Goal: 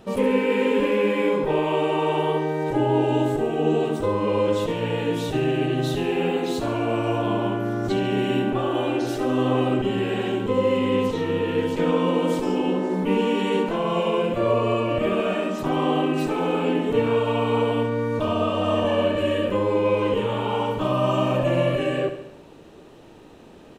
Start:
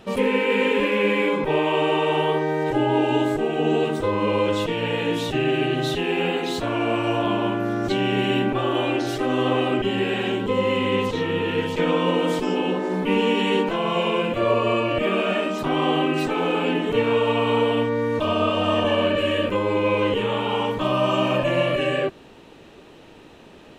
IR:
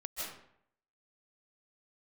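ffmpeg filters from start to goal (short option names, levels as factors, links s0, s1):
-filter_complex "[0:a]equalizer=f=2600:w=0.67:g=-6.5,asplit=2[s0][s1];[s1]aecho=0:1:70|140|210|280|350|420:0.316|0.177|0.0992|0.0555|0.0311|0.0174[s2];[s0][s2]amix=inputs=2:normalize=0"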